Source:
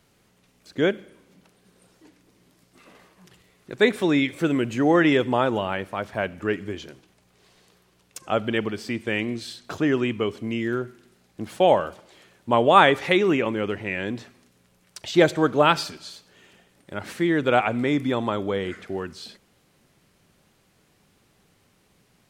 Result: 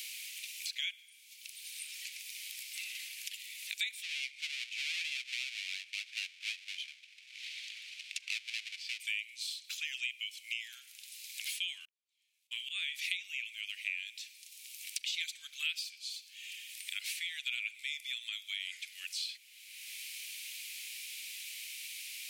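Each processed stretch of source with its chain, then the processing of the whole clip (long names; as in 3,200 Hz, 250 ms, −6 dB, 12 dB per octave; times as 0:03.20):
0:04.03–0:09.00: each half-wave held at its own peak + head-to-tape spacing loss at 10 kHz 27 dB
0:11.85–0:12.99: volume swells 669 ms + noise gate −52 dBFS, range −32 dB + double-tracking delay 33 ms −8.5 dB
whole clip: Chebyshev high-pass filter 2,300 Hz, order 5; high-shelf EQ 8,900 Hz +6.5 dB; multiband upward and downward compressor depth 100%; level −1 dB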